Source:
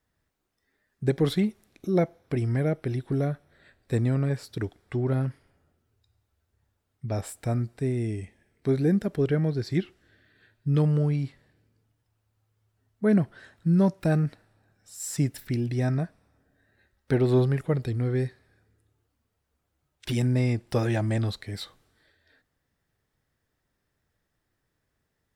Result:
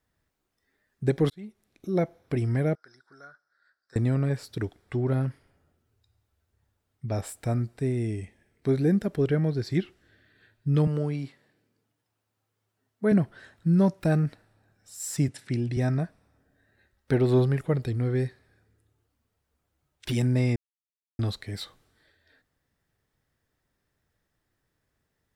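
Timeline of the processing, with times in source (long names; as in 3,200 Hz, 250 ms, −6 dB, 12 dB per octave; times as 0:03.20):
0:01.30–0:02.19: fade in
0:02.75–0:03.96: pair of resonant band-passes 2,700 Hz, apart 1.8 octaves
0:10.87–0:13.12: high-pass filter 190 Hz
0:15.28–0:15.77: elliptic band-pass filter 110–9,300 Hz
0:20.56–0:21.19: silence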